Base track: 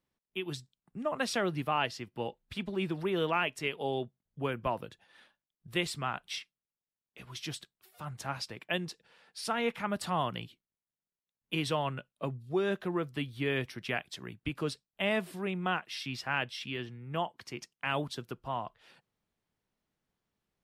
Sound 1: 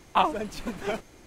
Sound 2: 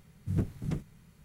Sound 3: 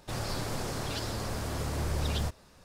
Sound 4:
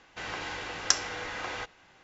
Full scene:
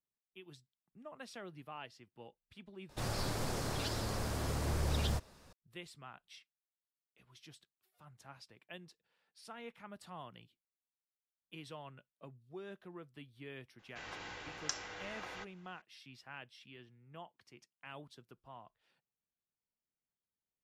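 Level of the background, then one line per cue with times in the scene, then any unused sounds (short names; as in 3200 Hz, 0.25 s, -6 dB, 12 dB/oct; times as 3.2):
base track -17.5 dB
2.89 replace with 3 -3 dB
13.79 add 4 -10.5 dB + limiter -8 dBFS
not used: 1, 2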